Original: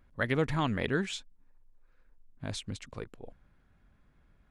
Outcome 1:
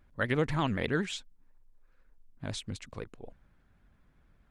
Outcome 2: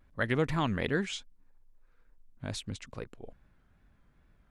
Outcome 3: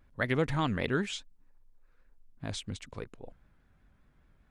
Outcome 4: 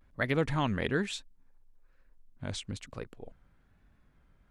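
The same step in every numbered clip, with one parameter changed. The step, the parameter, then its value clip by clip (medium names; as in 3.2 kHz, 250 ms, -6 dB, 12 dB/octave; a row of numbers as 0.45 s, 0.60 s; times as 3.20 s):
vibrato, rate: 12 Hz, 2.4 Hz, 5 Hz, 1.1 Hz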